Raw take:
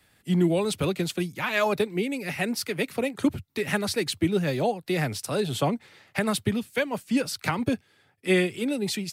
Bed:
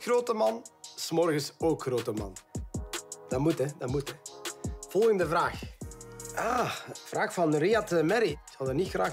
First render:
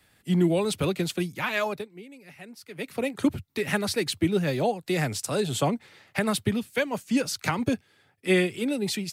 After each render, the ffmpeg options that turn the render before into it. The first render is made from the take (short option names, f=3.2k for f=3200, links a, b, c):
-filter_complex "[0:a]asettb=1/sr,asplit=3[a][b][c];[a]atrim=end=4.734[d];[b]atrim=start=4.73:end=5.71,asetpts=PTS-STARTPTS,afade=t=in:d=0.004:c=qsin,afade=t=out:st=0.976:d=0.004:c=qsin,equalizer=f=7.3k:t=o:w=0.45:g=7[e];[c]atrim=start=5.706[f];[d][e]acrossfade=d=0.004:c1=hsin:c2=qsin[g];[g][f]acrossfade=d=0.004:c1=qsin:c2=hsin,asettb=1/sr,asplit=3[h][i][j];[h]atrim=end=6.794[k];[i]atrim=start=6.79:end=7.74,asetpts=PTS-STARTPTS,afade=t=in:d=0.004:c=qsin,afade=t=out:st=0.946:d=0.004:c=qsin,equalizer=f=6.5k:w=3.8:g=6[l];[j]atrim=start=7.736[m];[k][l]acrossfade=d=0.004:c1=hsin:c2=qsin[n];[n][m]acrossfade=d=0.004:c1=qsin:c2=hsin,asplit=3[o][p][q];[o]atrim=end=1.89,asetpts=PTS-STARTPTS,afade=t=out:st=1.46:d=0.43:silence=0.141254[r];[p]atrim=start=1.89:end=2.66,asetpts=PTS-STARTPTS,volume=-17dB[s];[q]atrim=start=2.66,asetpts=PTS-STARTPTS,afade=t=in:d=0.43:silence=0.141254[t];[r][s][t]concat=n=3:v=0:a=1"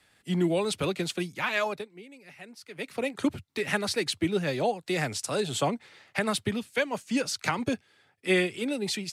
-af "lowpass=9.8k,lowshelf=f=280:g=-7"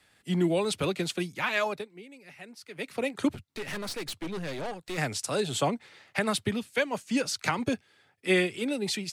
-filter_complex "[0:a]asettb=1/sr,asplit=3[a][b][c];[a]atrim=end=3.354[d];[b]atrim=start=3.35:end=4.98,asetpts=PTS-STARTPTS,afade=t=in:d=0.004:c=qsin,afade=t=out:st=1.626:d=0.004:c=qsin,aeval=exprs='(tanh(39.8*val(0)+0.6)-tanh(0.6))/39.8':c=same[e];[c]atrim=start=4.976[f];[d][e]acrossfade=d=0.004:c1=hsin:c2=qsin[g];[g][f]acrossfade=d=0.004:c1=qsin:c2=hsin"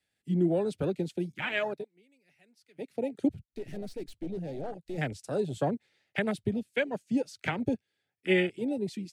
-af "afwtdn=0.0282,equalizer=f=1.1k:w=2.4:g=-12.5"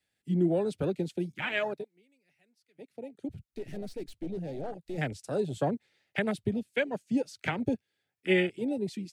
-filter_complex "[0:a]asplit=2[a][b];[a]atrim=end=3.29,asetpts=PTS-STARTPTS,afade=t=out:st=1.79:d=1.5:c=qua:silence=0.298538[c];[b]atrim=start=3.29,asetpts=PTS-STARTPTS,afade=t=in:d=0.004:c=hsin:silence=0.298538[d];[c][d]concat=n=2:v=0:a=1"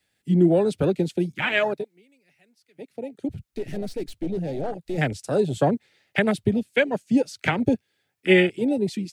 -af "volume=8.5dB"